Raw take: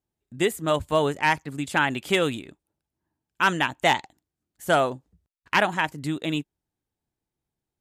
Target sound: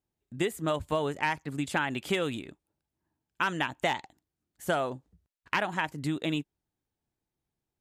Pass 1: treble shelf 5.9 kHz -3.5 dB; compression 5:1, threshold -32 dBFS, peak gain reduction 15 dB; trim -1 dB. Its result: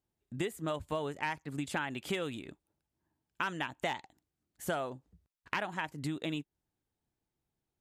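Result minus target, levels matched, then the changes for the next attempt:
compression: peak gain reduction +6.5 dB
change: compression 5:1, threshold -24 dBFS, peak gain reduction 8.5 dB

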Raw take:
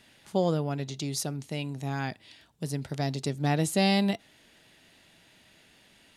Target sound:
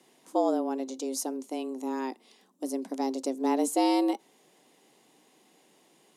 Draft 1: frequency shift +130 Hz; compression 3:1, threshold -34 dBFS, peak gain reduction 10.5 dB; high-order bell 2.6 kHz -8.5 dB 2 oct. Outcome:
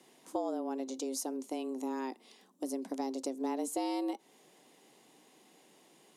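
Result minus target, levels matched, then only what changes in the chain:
compression: peak gain reduction +10.5 dB
remove: compression 3:1, threshold -34 dBFS, peak gain reduction 10.5 dB

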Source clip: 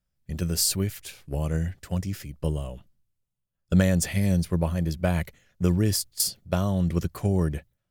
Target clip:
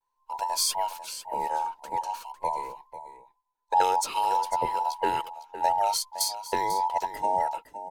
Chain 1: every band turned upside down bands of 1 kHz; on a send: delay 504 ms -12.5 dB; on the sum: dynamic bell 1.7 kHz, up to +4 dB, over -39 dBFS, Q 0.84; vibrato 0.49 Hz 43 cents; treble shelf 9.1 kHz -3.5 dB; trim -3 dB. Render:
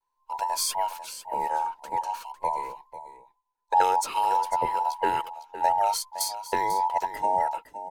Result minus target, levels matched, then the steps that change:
4 kHz band -3.5 dB
change: dynamic bell 4 kHz, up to +4 dB, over -39 dBFS, Q 0.84

